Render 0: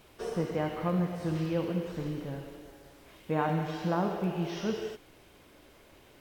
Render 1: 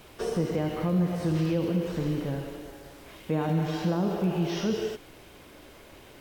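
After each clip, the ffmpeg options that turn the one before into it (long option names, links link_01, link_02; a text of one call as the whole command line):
ffmpeg -i in.wav -filter_complex "[0:a]acrossover=split=490|3000[link_01][link_02][link_03];[link_02]acompressor=threshold=-45dB:ratio=2.5[link_04];[link_01][link_04][link_03]amix=inputs=3:normalize=0,asplit=2[link_05][link_06];[link_06]alimiter=level_in=4dB:limit=-24dB:level=0:latency=1:release=36,volume=-4dB,volume=2dB[link_07];[link_05][link_07]amix=inputs=2:normalize=0" out.wav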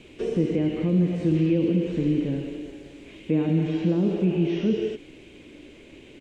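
ffmpeg -i in.wav -filter_complex "[0:a]firequalizer=gain_entry='entry(100,0);entry(290,9);entry(730,-8);entry(1300,-10);entry(2400,6);entry(5100,-7);entry(7200,-1);entry(13000,-25)':delay=0.05:min_phase=1,acrossover=split=2700[link_01][link_02];[link_02]acompressor=threshold=-50dB:ratio=4:attack=1:release=60[link_03];[link_01][link_03]amix=inputs=2:normalize=0" out.wav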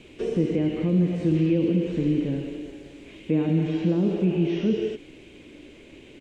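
ffmpeg -i in.wav -af anull out.wav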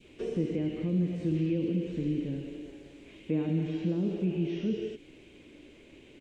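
ffmpeg -i in.wav -af "adynamicequalizer=threshold=0.0112:dfrequency=930:dqfactor=0.72:tfrequency=930:tqfactor=0.72:attack=5:release=100:ratio=0.375:range=3:mode=cutabove:tftype=bell,volume=-6.5dB" out.wav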